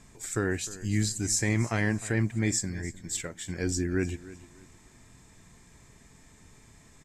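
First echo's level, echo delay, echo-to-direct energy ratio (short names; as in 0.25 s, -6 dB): -17.5 dB, 0.305 s, -17.0 dB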